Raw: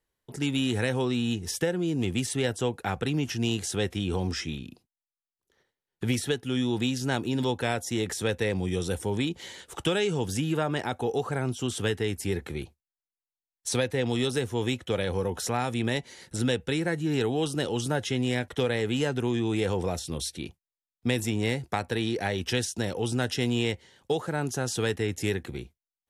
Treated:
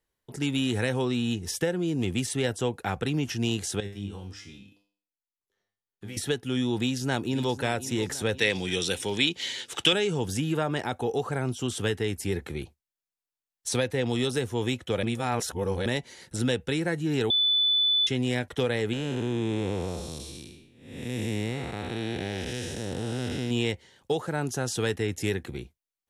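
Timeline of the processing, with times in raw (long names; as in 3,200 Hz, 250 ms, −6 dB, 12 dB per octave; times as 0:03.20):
0:03.80–0:06.17: tuned comb filter 100 Hz, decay 0.47 s, mix 90%
0:06.77–0:07.62: delay throw 530 ms, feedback 55%, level −13.5 dB
0:08.38–0:09.93: meter weighting curve D
0:15.03–0:15.86: reverse
0:17.30–0:18.07: beep over 3,490 Hz −20 dBFS
0:18.93–0:23.51: spectrum smeared in time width 344 ms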